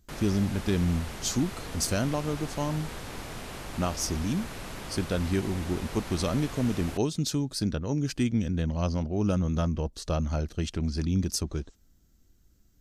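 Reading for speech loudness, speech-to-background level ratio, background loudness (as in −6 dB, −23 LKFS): −29.5 LKFS, 10.0 dB, −39.5 LKFS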